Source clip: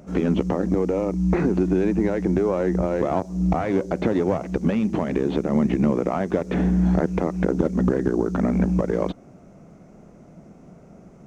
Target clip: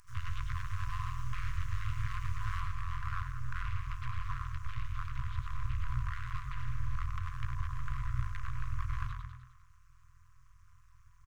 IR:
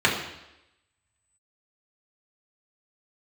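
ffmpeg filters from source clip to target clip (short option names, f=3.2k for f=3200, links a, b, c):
-filter_complex "[0:a]acrossover=split=3500[a][b];[b]acompressor=threshold=-57dB:ratio=4:attack=1:release=60[c];[a][c]amix=inputs=2:normalize=0,aemphasis=mode=production:type=50fm,aeval=exprs='abs(val(0))':c=same,asetnsamples=n=441:p=0,asendcmd='2.6 highshelf g -8',highshelf=f=2.1k:g=-2,asplit=8[d][e][f][g][h][i][j][k];[e]adelay=102,afreqshift=41,volume=-5.5dB[l];[f]adelay=204,afreqshift=82,volume=-10.9dB[m];[g]adelay=306,afreqshift=123,volume=-16.2dB[n];[h]adelay=408,afreqshift=164,volume=-21.6dB[o];[i]adelay=510,afreqshift=205,volume=-26.9dB[p];[j]adelay=612,afreqshift=246,volume=-32.3dB[q];[k]adelay=714,afreqshift=287,volume=-37.6dB[r];[d][l][m][n][o][p][q][r]amix=inputs=8:normalize=0,tremolo=f=180:d=0.947,afftfilt=real='re*(1-between(b*sr/4096,130,990))':imag='im*(1-between(b*sr/4096,130,990))':win_size=4096:overlap=0.75,volume=-6dB"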